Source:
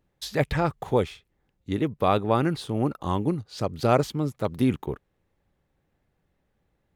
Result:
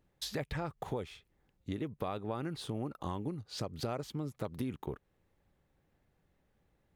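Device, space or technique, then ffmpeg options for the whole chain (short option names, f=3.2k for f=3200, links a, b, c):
serial compression, peaks first: -af "acompressor=threshold=-29dB:ratio=4,acompressor=threshold=-39dB:ratio=1.5,volume=-1.5dB"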